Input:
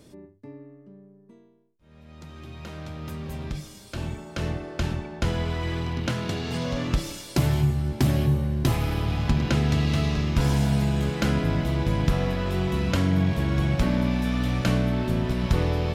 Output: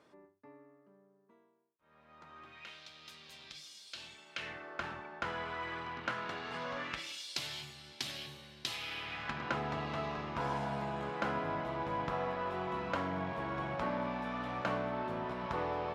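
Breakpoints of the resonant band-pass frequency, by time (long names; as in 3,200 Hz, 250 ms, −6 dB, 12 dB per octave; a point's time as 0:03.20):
resonant band-pass, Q 1.6
0:02.42 1,200 Hz
0:02.82 4,000 Hz
0:04.13 4,000 Hz
0:04.73 1,300 Hz
0:06.76 1,300 Hz
0:07.24 3,900 Hz
0:08.71 3,900 Hz
0:09.61 970 Hz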